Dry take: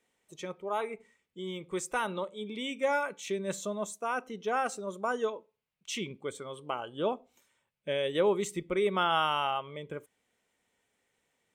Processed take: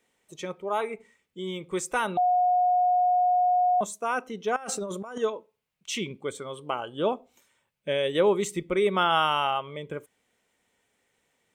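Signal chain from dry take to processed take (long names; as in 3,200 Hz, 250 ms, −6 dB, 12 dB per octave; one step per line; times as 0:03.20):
0:02.17–0:03.81: beep over 723 Hz −23.5 dBFS
0:04.56–0:05.18: compressor whose output falls as the input rises −40 dBFS, ratio −1
level +4.5 dB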